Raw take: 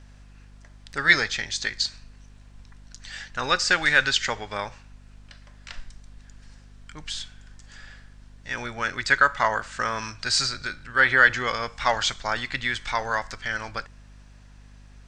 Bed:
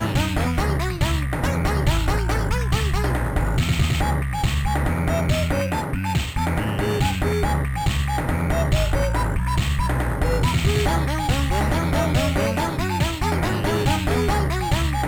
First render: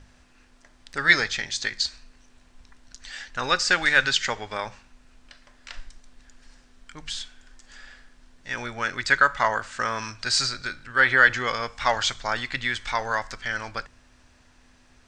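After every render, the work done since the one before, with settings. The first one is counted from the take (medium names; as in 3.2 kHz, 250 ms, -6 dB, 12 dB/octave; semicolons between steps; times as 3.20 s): de-hum 50 Hz, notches 4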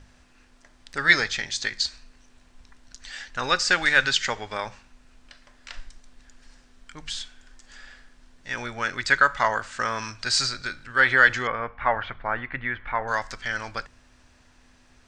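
11.47–13.08 s: low-pass 2.1 kHz 24 dB/octave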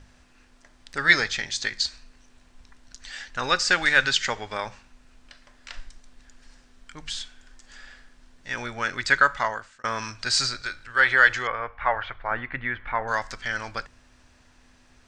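9.26–9.84 s: fade out; 10.56–12.31 s: peaking EQ 200 Hz -10.5 dB 1.4 oct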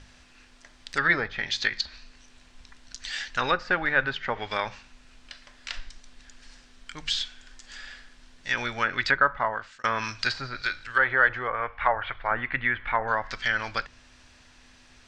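low-pass that closes with the level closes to 1.1 kHz, closed at -21 dBFS; peaking EQ 3.5 kHz +7 dB 2.2 oct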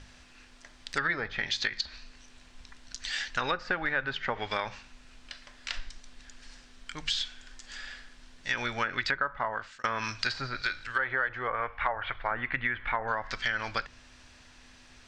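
compression 5:1, threshold -26 dBFS, peak gain reduction 10.5 dB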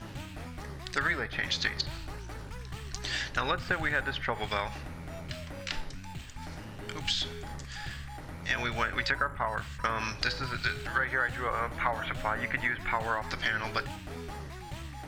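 add bed -20.5 dB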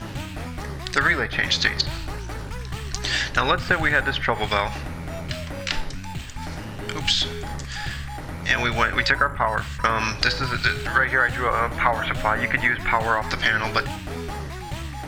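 trim +9.5 dB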